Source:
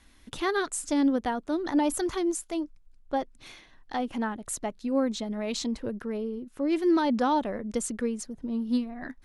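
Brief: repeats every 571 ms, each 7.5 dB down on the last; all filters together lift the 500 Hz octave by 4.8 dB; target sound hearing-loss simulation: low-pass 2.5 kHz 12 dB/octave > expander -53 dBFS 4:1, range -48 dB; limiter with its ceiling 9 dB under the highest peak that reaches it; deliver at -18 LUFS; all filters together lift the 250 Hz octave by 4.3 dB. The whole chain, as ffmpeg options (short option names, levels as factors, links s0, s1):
-af "equalizer=f=250:t=o:g=3.5,equalizer=f=500:t=o:g=5,alimiter=limit=0.1:level=0:latency=1,lowpass=2500,aecho=1:1:571|1142|1713|2284|2855:0.422|0.177|0.0744|0.0312|0.0131,agate=range=0.00398:threshold=0.00224:ratio=4,volume=3.35"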